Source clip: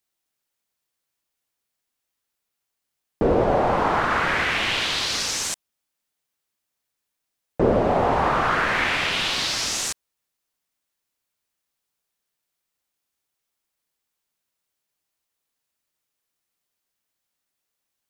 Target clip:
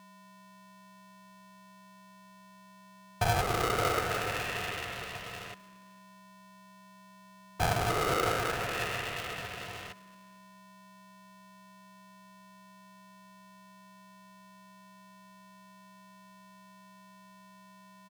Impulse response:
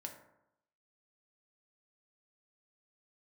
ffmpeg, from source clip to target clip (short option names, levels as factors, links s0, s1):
-filter_complex "[0:a]asplit=3[s0][s1][s2];[s0]bandpass=f=300:t=q:w=8,volume=1[s3];[s1]bandpass=f=870:t=q:w=8,volume=0.501[s4];[s2]bandpass=f=2240:t=q:w=8,volume=0.355[s5];[s3][s4][s5]amix=inputs=3:normalize=0,acrossover=split=180|1600[s6][s7][s8];[s8]acompressor=threshold=0.002:ratio=6[s9];[s6][s7][s9]amix=inputs=3:normalize=0,aeval=exprs='val(0)+0.00178*sin(2*PI*600*n/s)':c=same,equalizer=f=2700:w=0.6:g=11.5,asplit=2[s10][s11];[s11]adynamicsmooth=sensitivity=7.5:basefreq=2000,volume=1[s12];[s10][s12]amix=inputs=2:normalize=0,asplit=4[s13][s14][s15][s16];[s14]adelay=223,afreqshift=-67,volume=0.0841[s17];[s15]adelay=446,afreqshift=-134,volume=0.0363[s18];[s16]adelay=669,afreqshift=-201,volume=0.0155[s19];[s13][s17][s18][s19]amix=inputs=4:normalize=0,aeval=exprs='val(0)*sgn(sin(2*PI*410*n/s))':c=same,volume=0.596"